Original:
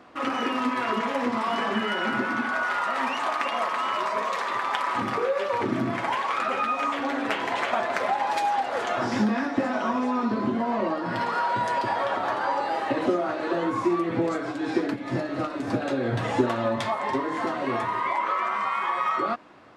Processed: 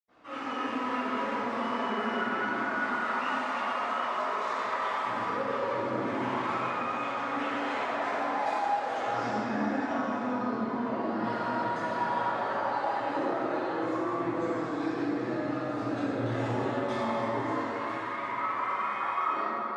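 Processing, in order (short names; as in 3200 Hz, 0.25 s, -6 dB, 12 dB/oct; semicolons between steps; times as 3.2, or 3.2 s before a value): 17.42–18.2 HPF 1100 Hz 24 dB/oct; in parallel at -3 dB: negative-ratio compressor -28 dBFS; on the sum: reverb RT60 4.4 s, pre-delay 78 ms; gain +4 dB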